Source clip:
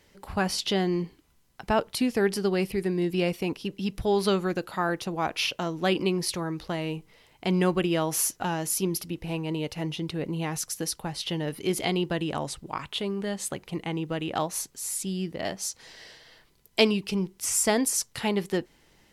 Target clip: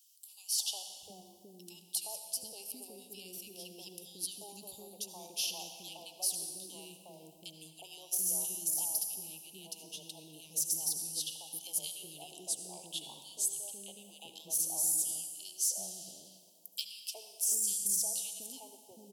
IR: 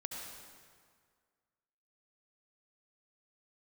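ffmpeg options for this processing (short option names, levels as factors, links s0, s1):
-filter_complex "[0:a]equalizer=f=160:t=o:w=0.67:g=3,equalizer=f=1600:t=o:w=0.67:g=-6,equalizer=f=4000:t=o:w=0.67:g=-6,acompressor=threshold=0.0562:ratio=6,asplit=2[s0][s1];[1:a]atrim=start_sample=2205[s2];[s1][s2]afir=irnorm=-1:irlink=0,volume=1[s3];[s0][s3]amix=inputs=2:normalize=0,deesser=0.45,asuperstop=centerf=1600:order=8:qfactor=0.76,aderivative,acrossover=split=430|1600[s4][s5][s6];[s5]adelay=360[s7];[s4]adelay=730[s8];[s8][s7][s6]amix=inputs=3:normalize=0"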